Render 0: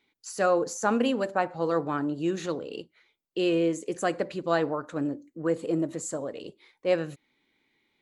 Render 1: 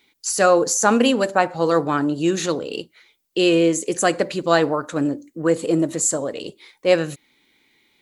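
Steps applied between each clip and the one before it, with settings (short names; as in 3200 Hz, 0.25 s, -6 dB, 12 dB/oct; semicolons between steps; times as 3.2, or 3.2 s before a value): high shelf 3800 Hz +10.5 dB; gain +8 dB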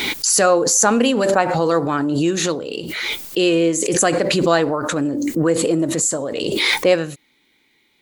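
backwards sustainer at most 23 dB/s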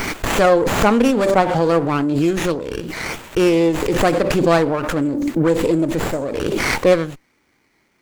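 running maximum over 9 samples; gain +1 dB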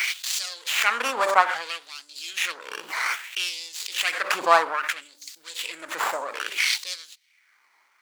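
LFO high-pass sine 0.61 Hz 980–4800 Hz; gain -2 dB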